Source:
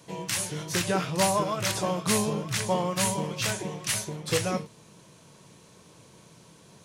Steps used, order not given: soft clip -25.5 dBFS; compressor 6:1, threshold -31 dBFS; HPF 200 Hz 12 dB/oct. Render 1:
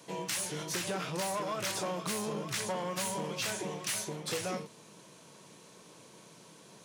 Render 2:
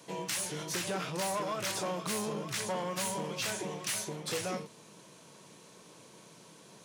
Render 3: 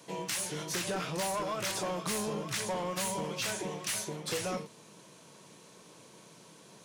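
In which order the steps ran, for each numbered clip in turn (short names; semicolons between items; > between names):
soft clip > HPF > compressor; soft clip > compressor > HPF; HPF > soft clip > compressor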